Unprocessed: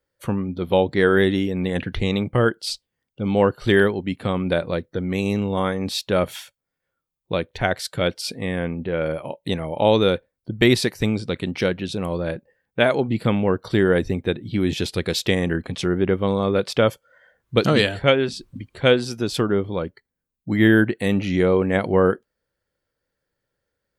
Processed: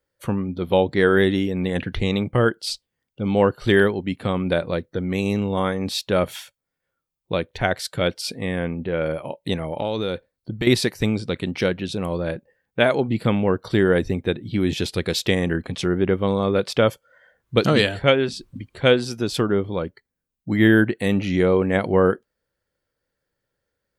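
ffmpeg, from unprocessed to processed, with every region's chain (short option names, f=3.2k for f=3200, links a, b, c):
-filter_complex "[0:a]asettb=1/sr,asplit=3[a][b][c];[a]atrim=end=9.684[d];[b]atrim=start=9.68:end=10.67,asetpts=PTS-STARTPTS,afade=t=in:d=0.004:c=qsin,afade=t=out:st=0.986:d=0.004:c=qsin,equalizer=f=4.3k:w=5.8:g=6.5,acompressor=threshold=-21dB:ratio=5:attack=3.2:release=140:knee=1:detection=peak[e];[c]atrim=start=10.666[f];[d][e]acrossfade=d=0.004:c1=hsin:c2=qsin[g];[g][f]acrossfade=d=0.004:c1=qsin:c2=hsin"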